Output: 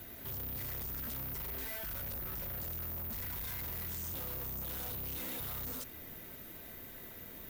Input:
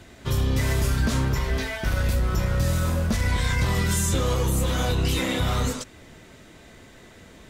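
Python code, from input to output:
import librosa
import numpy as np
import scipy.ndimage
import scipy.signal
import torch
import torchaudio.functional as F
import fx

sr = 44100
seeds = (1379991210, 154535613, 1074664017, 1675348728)

y = fx.hum_notches(x, sr, base_hz=60, count=2)
y = (np.kron(scipy.signal.resample_poly(y, 1, 3), np.eye(3)[0]) * 3)[:len(y)]
y = 10.0 ** (-30.5 / 20.0) * np.tanh(y / 10.0 ** (-30.5 / 20.0))
y = y * 10.0 ** (-4.5 / 20.0)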